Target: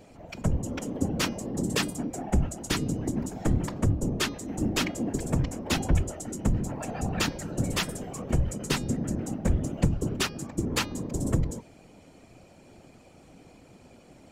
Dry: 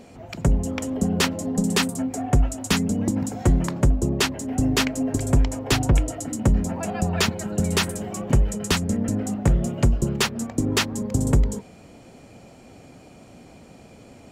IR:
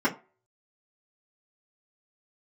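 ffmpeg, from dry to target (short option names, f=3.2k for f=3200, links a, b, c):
-af "afftfilt=real='hypot(re,im)*cos(2*PI*random(0))':imag='hypot(re,im)*sin(2*PI*random(1))':win_size=512:overlap=0.75,bandreject=f=409.3:t=h:w=4,bandreject=f=818.6:t=h:w=4,bandreject=f=1.2279k:t=h:w=4,bandreject=f=1.6372k:t=h:w=4,bandreject=f=2.0465k:t=h:w=4,bandreject=f=2.4558k:t=h:w=4,bandreject=f=2.8651k:t=h:w=4,bandreject=f=3.2744k:t=h:w=4,bandreject=f=3.6837k:t=h:w=4,bandreject=f=4.093k:t=h:w=4,bandreject=f=4.5023k:t=h:w=4,bandreject=f=4.9116k:t=h:w=4,bandreject=f=5.3209k:t=h:w=4,bandreject=f=5.7302k:t=h:w=4,bandreject=f=6.1395k:t=h:w=4"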